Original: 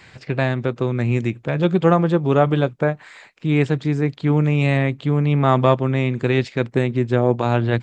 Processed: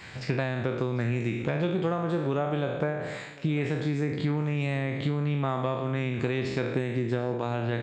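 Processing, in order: spectral sustain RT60 0.73 s; compression 10:1, threshold -24 dBFS, peak gain reduction 16 dB; delay 747 ms -21 dB

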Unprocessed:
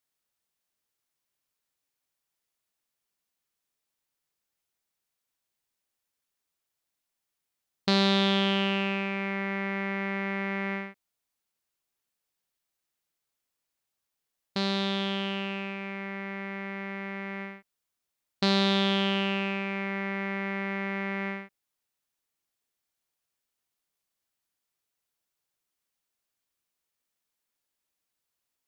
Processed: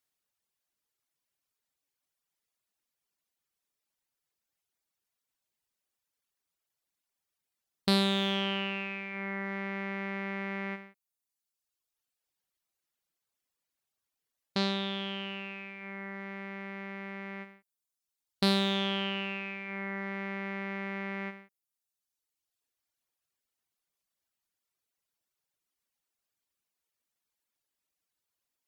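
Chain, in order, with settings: one-sided clip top -23 dBFS, bottom -14 dBFS; reverb removal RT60 1.2 s

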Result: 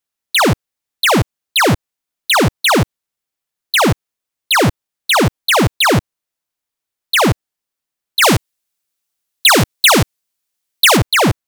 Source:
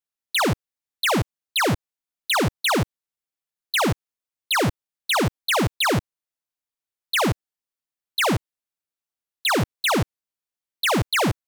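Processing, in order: 8.22–10.97 s: treble shelf 2.6 kHz +8 dB; trim +8.5 dB

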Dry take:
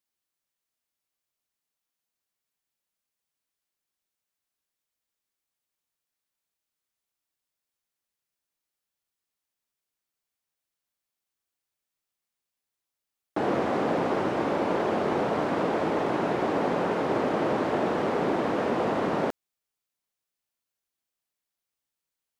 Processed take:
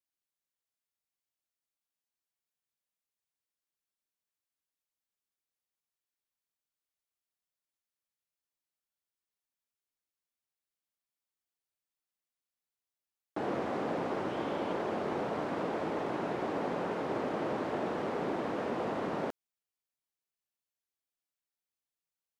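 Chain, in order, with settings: 14.29–14.73 s: peaking EQ 3.2 kHz +7.5 dB 0.25 oct; trim -8 dB

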